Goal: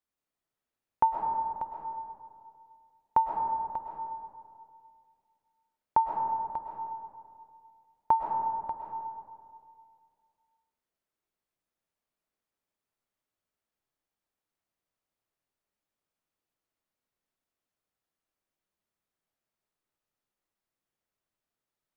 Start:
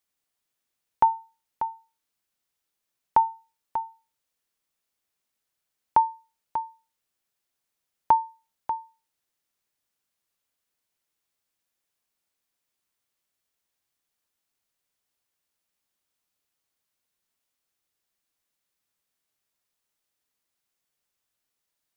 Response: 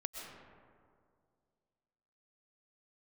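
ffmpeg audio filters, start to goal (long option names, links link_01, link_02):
-filter_complex "[0:a]highshelf=frequency=2100:gain=-10.5[link_01];[1:a]atrim=start_sample=2205[link_02];[link_01][link_02]afir=irnorm=-1:irlink=0"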